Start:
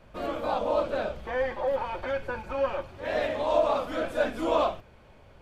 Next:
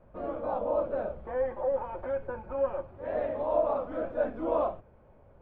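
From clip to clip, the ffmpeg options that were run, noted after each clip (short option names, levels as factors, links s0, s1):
-af "lowpass=1100,equalizer=f=530:t=o:w=0.35:g=3,volume=0.668"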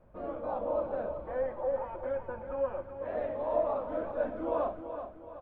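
-af "aecho=1:1:378|756|1134|1512|1890:0.355|0.153|0.0656|0.0282|0.0121,volume=0.708"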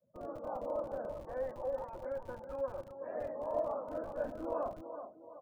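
-filter_complex "[0:a]afftdn=nr=23:nf=-52,acrossover=split=130|610[s0][s1][s2];[s0]acrusher=bits=7:mix=0:aa=0.000001[s3];[s3][s1][s2]amix=inputs=3:normalize=0,volume=0.531"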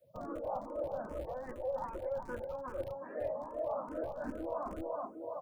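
-filter_complex "[0:a]areverse,acompressor=threshold=0.00562:ratio=6,areverse,asplit=2[s0][s1];[s1]afreqshift=2.5[s2];[s0][s2]amix=inputs=2:normalize=1,volume=3.98"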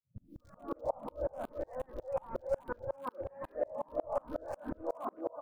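-filter_complex "[0:a]acrossover=split=210|1800[s0][s1][s2];[s2]adelay=240[s3];[s1]adelay=400[s4];[s0][s4][s3]amix=inputs=3:normalize=0,aeval=exprs='val(0)*pow(10,-33*if(lt(mod(-5.5*n/s,1),2*abs(-5.5)/1000),1-mod(-5.5*n/s,1)/(2*abs(-5.5)/1000),(mod(-5.5*n/s,1)-2*abs(-5.5)/1000)/(1-2*abs(-5.5)/1000))/20)':c=same,volume=2.99"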